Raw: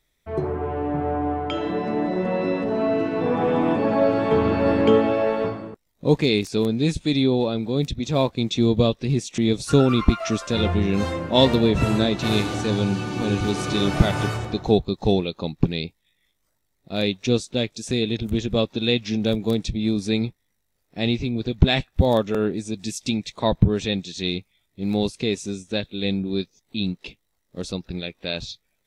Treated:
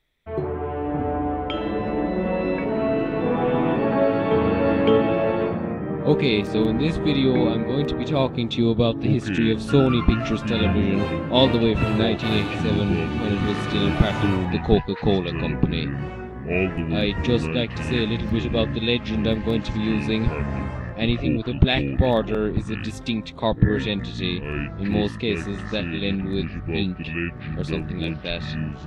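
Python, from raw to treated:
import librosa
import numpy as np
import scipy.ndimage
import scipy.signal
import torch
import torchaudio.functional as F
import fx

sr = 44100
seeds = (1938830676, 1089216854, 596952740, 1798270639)

y = fx.high_shelf_res(x, sr, hz=4300.0, db=-8.5, q=1.5)
y = fx.echo_pitch(y, sr, ms=462, semitones=-6, count=2, db_per_echo=-6.0)
y = y * 10.0 ** (-1.0 / 20.0)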